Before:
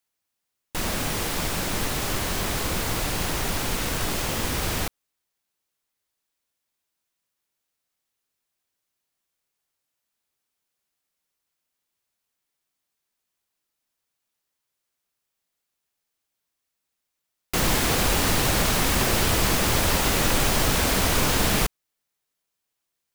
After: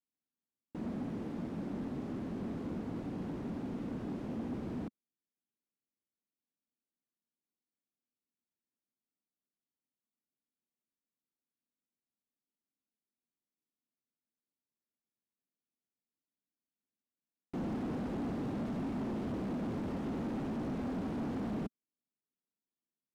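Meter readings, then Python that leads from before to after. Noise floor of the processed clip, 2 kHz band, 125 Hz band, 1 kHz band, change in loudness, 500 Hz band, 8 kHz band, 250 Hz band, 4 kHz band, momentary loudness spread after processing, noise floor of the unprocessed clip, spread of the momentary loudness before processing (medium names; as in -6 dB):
under -85 dBFS, -27.0 dB, -14.0 dB, -19.0 dB, -15.5 dB, -14.0 dB, under -40 dB, -5.5 dB, -33.5 dB, 4 LU, -82 dBFS, 5 LU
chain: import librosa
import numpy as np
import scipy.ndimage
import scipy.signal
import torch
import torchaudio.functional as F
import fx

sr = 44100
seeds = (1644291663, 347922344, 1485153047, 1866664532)

y = fx.bandpass_q(x, sr, hz=240.0, q=2.7)
y = np.clip(y, -10.0 ** (-34.0 / 20.0), 10.0 ** (-34.0 / 20.0))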